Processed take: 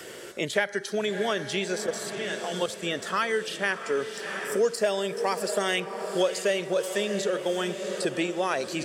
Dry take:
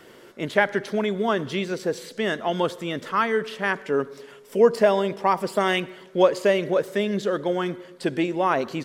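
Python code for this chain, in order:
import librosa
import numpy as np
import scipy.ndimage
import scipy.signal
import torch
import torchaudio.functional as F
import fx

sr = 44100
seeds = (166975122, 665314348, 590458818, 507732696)

y = scipy.signal.sosfilt(scipy.signal.butter(2, 49.0, 'highpass', fs=sr, output='sos'), x)
y = fx.notch(y, sr, hz=2100.0, q=29.0)
y = fx.noise_reduce_blind(y, sr, reduce_db=10)
y = fx.graphic_eq(y, sr, hz=(125, 250, 1000, 8000), db=(-4, -10, -9, 10))
y = fx.level_steps(y, sr, step_db=13, at=(1.86, 2.83))
y = fx.echo_diffused(y, sr, ms=667, feedback_pct=53, wet_db=-12)
y = fx.band_squash(y, sr, depth_pct=70)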